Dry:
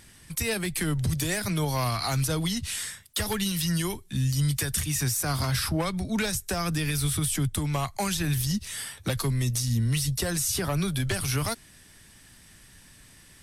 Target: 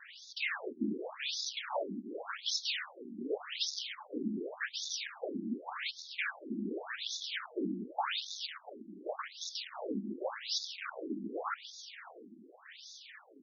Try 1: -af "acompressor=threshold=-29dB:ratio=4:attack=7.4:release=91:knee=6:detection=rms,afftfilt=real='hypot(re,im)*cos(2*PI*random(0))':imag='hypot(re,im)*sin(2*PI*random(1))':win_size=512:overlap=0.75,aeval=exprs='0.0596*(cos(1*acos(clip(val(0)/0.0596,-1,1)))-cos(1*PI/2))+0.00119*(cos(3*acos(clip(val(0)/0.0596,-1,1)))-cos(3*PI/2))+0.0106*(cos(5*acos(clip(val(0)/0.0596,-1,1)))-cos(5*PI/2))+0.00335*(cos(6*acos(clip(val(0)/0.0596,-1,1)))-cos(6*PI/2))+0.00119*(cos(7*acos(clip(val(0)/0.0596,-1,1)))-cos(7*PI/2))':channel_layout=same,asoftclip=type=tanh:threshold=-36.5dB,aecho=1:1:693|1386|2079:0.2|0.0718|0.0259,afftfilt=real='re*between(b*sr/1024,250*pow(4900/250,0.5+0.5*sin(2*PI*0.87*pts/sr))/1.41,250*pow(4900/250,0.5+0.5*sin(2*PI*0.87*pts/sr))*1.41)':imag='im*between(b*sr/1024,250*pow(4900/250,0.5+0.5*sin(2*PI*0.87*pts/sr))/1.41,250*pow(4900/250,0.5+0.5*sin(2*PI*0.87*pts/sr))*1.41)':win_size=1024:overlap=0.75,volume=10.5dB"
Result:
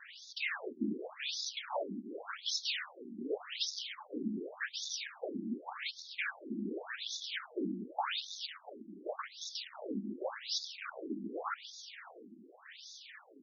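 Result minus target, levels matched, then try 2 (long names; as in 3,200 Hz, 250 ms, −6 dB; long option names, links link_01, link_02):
downward compressor: peak gain reduction +7 dB
-af "afftfilt=real='hypot(re,im)*cos(2*PI*random(0))':imag='hypot(re,im)*sin(2*PI*random(1))':win_size=512:overlap=0.75,aeval=exprs='0.0596*(cos(1*acos(clip(val(0)/0.0596,-1,1)))-cos(1*PI/2))+0.00119*(cos(3*acos(clip(val(0)/0.0596,-1,1)))-cos(3*PI/2))+0.0106*(cos(5*acos(clip(val(0)/0.0596,-1,1)))-cos(5*PI/2))+0.00335*(cos(6*acos(clip(val(0)/0.0596,-1,1)))-cos(6*PI/2))+0.00119*(cos(7*acos(clip(val(0)/0.0596,-1,1)))-cos(7*PI/2))':channel_layout=same,asoftclip=type=tanh:threshold=-36.5dB,aecho=1:1:693|1386|2079:0.2|0.0718|0.0259,afftfilt=real='re*between(b*sr/1024,250*pow(4900/250,0.5+0.5*sin(2*PI*0.87*pts/sr))/1.41,250*pow(4900/250,0.5+0.5*sin(2*PI*0.87*pts/sr))*1.41)':imag='im*between(b*sr/1024,250*pow(4900/250,0.5+0.5*sin(2*PI*0.87*pts/sr))/1.41,250*pow(4900/250,0.5+0.5*sin(2*PI*0.87*pts/sr))*1.41)':win_size=1024:overlap=0.75,volume=10.5dB"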